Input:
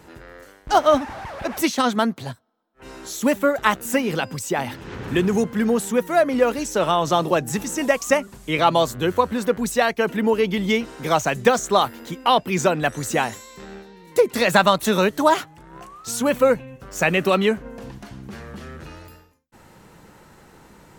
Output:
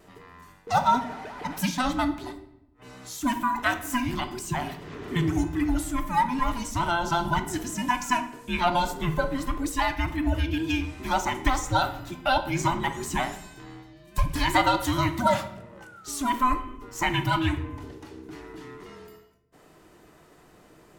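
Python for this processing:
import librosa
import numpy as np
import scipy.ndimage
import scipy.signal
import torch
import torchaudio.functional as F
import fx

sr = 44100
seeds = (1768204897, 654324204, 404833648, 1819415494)

y = fx.band_invert(x, sr, width_hz=500)
y = fx.vibrato(y, sr, rate_hz=0.93, depth_cents=11.0)
y = fx.room_shoebox(y, sr, seeds[0], volume_m3=240.0, walls='mixed', distance_m=0.43)
y = y * 10.0 ** (-6.5 / 20.0)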